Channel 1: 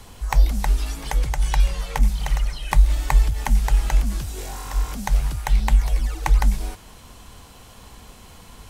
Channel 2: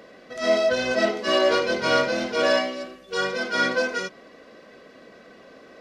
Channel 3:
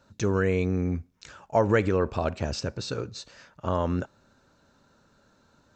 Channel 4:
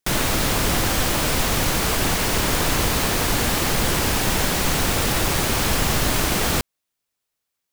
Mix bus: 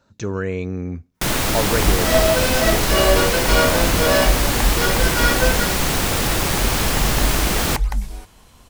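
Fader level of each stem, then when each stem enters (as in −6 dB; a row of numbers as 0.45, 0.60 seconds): −4.5, +2.5, 0.0, +1.0 decibels; 1.50, 1.65, 0.00, 1.15 seconds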